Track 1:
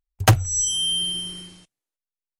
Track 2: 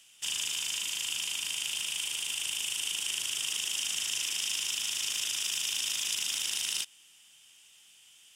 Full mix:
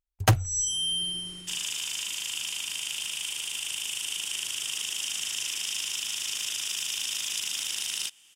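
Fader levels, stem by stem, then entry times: -5.5, +0.5 dB; 0.00, 1.25 s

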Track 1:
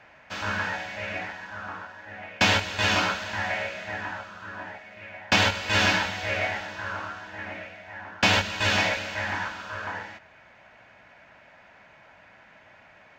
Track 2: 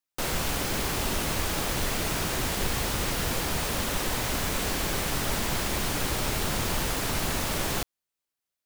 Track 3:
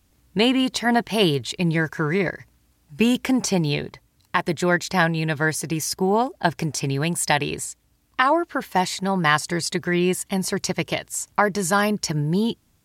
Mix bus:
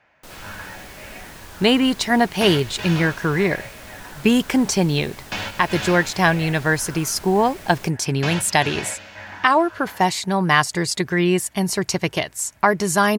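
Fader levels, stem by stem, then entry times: -7.5, -12.5, +2.5 dB; 0.00, 0.05, 1.25 s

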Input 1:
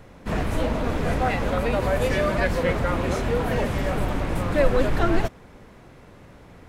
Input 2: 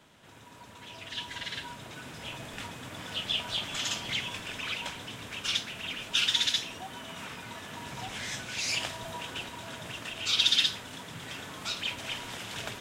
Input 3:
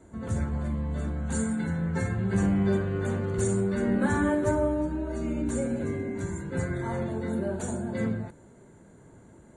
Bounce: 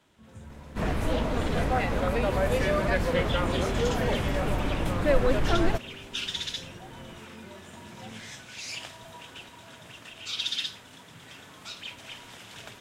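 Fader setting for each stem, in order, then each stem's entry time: -3.0, -6.5, -17.5 dB; 0.50, 0.00, 0.05 s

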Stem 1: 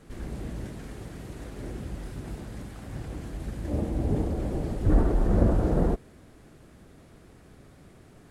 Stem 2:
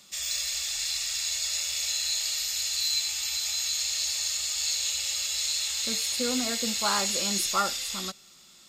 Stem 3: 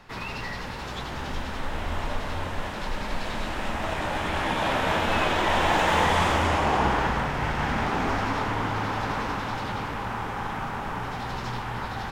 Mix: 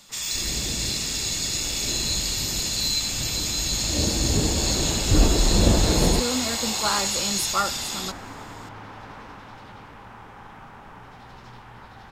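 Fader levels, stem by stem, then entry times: +3.0, +2.5, -12.5 dB; 0.25, 0.00, 0.00 s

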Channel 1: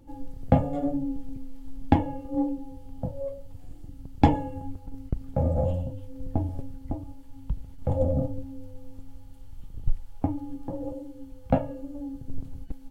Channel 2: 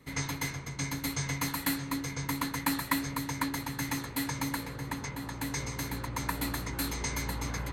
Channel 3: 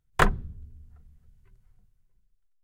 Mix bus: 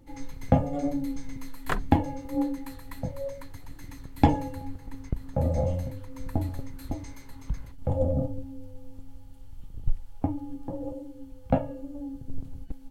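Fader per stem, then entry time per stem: -1.0, -16.5, -8.5 dB; 0.00, 0.00, 1.50 s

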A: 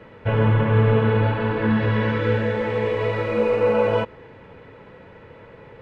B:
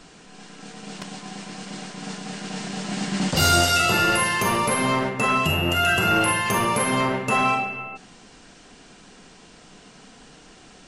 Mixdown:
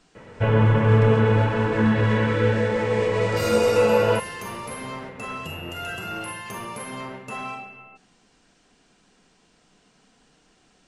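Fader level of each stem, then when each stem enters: +0.5, -12.5 dB; 0.15, 0.00 s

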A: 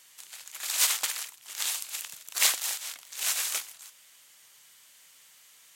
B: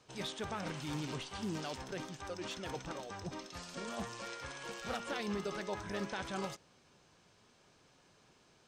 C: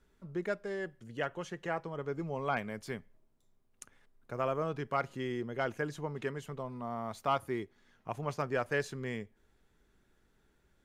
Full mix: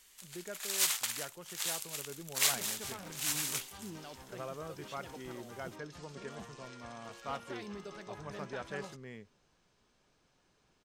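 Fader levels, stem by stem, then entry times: -5.5, -7.0, -10.0 dB; 0.00, 2.40, 0.00 s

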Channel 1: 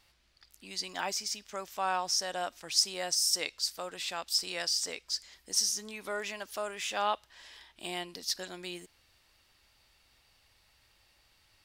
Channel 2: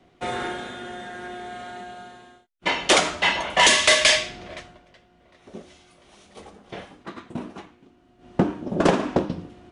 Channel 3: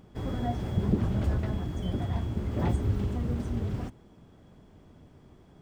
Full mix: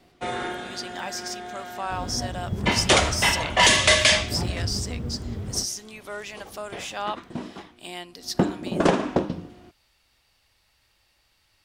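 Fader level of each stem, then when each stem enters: +0.5, -1.0, -1.5 dB; 0.00, 0.00, 1.75 s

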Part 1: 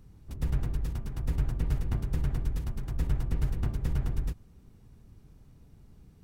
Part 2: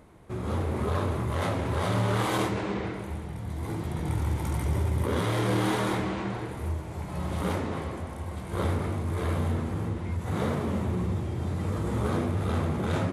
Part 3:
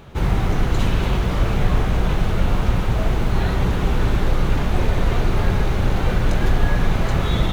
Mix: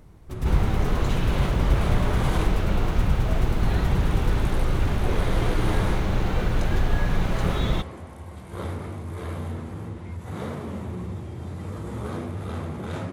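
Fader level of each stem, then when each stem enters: +3.0, -4.0, -5.0 dB; 0.00, 0.00, 0.30 s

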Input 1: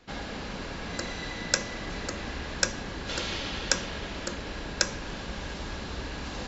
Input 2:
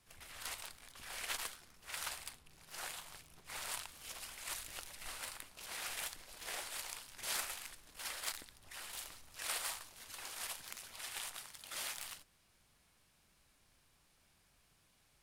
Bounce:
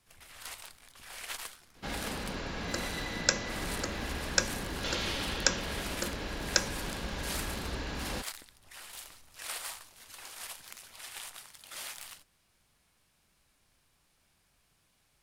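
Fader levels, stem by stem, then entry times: -1.0, +0.5 dB; 1.75, 0.00 s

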